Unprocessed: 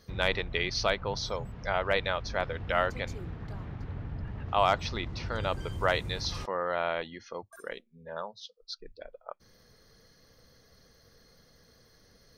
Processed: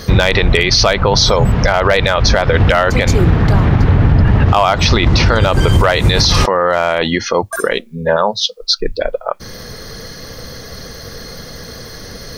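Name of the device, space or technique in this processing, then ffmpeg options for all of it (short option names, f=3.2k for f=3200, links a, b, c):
loud club master: -af "acompressor=threshold=-30dB:ratio=2.5,asoftclip=type=hard:threshold=-21.5dB,alimiter=level_in=31dB:limit=-1dB:release=50:level=0:latency=1,volume=-1dB"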